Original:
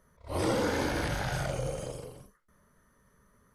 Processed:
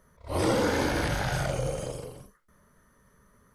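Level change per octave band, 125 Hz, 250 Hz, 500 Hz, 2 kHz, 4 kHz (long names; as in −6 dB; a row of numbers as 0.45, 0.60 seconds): +3.5, +3.5, +3.5, +3.5, +3.5 decibels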